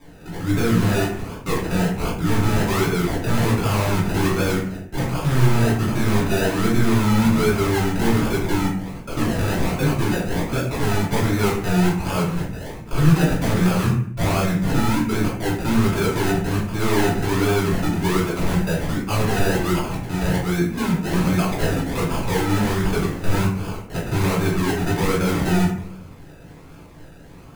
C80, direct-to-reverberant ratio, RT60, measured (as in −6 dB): 8.5 dB, −6.5 dB, 0.55 s